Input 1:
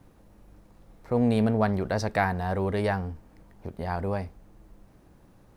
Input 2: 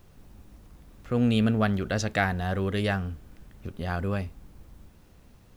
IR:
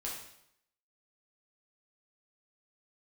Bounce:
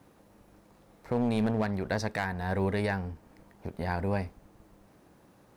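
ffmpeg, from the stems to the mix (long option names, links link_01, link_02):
-filter_complex "[0:a]highpass=frequency=240:poles=1,volume=1.5dB[link_01];[1:a]aeval=exprs='sgn(val(0))*max(abs(val(0))-0.00631,0)':channel_layout=same,adynamicsmooth=sensitivity=0.5:basefreq=1700,aeval=exprs='0.1*(abs(mod(val(0)/0.1+3,4)-2)-1)':channel_layout=same,volume=-3dB[link_02];[link_01][link_02]amix=inputs=2:normalize=0,alimiter=limit=-18.5dB:level=0:latency=1:release=430"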